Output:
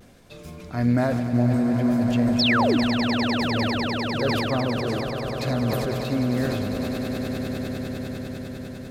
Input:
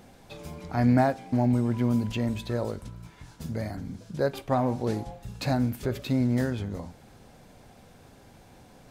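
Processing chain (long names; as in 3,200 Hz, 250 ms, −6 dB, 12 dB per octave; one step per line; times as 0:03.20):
parametric band 830 Hz −12.5 dB 0.24 octaves
sound drawn into the spectrogram fall, 0:02.39–0:02.77, 250–6,000 Hz −22 dBFS
pitch vibrato 0.68 Hz 33 cents
on a send: echo that builds up and dies away 100 ms, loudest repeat 8, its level −11.5 dB
on the sum: level that may fall only so fast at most 22 dB per second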